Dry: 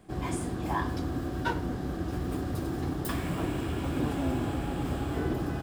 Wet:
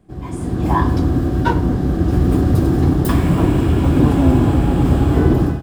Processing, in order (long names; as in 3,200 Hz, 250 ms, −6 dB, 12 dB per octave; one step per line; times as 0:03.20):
dynamic equaliser 1,000 Hz, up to +5 dB, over −48 dBFS, Q 4.5
automatic gain control gain up to 16 dB
low-shelf EQ 450 Hz +10.5 dB
level −6 dB